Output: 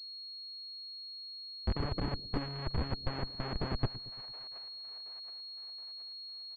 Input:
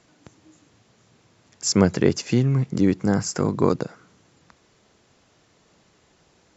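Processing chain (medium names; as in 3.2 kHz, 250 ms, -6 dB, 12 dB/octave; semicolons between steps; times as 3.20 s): vocoder on a note that slides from D#3, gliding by -5 st; comb 1.1 ms, depth 33%; low-pass that closes with the level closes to 670 Hz, closed at -20.5 dBFS; in parallel at -3 dB: compression 20:1, threshold -32 dBFS, peak gain reduction 21.5 dB; on the sum: Schmitt trigger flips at -21.5 dBFS; band-stop 1.4 kHz, Q 24; two-band feedback delay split 530 Hz, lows 114 ms, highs 723 ms, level -15 dB; harmonic-percussive split harmonic -17 dB; class-D stage that switches slowly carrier 4.3 kHz; trim -2 dB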